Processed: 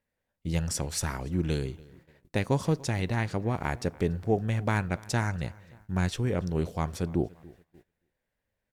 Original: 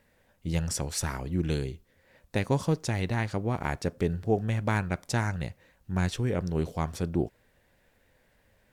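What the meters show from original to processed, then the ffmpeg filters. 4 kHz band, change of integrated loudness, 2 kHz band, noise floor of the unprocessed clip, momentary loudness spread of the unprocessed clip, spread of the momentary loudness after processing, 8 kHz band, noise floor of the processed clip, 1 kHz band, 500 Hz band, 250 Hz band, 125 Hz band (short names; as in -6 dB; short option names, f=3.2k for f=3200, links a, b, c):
0.0 dB, 0.0 dB, 0.0 dB, -67 dBFS, 7 LU, 7 LU, 0.0 dB, -84 dBFS, 0.0 dB, 0.0 dB, 0.0 dB, 0.0 dB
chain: -filter_complex "[0:a]asplit=2[a][b];[b]adelay=287,lowpass=f=3.9k:p=1,volume=-22.5dB,asplit=2[c][d];[d]adelay=287,lowpass=f=3.9k:p=1,volume=0.47,asplit=2[e][f];[f]adelay=287,lowpass=f=3.9k:p=1,volume=0.47[g];[a][c][e][g]amix=inputs=4:normalize=0,agate=range=-18dB:threshold=-54dB:ratio=16:detection=peak"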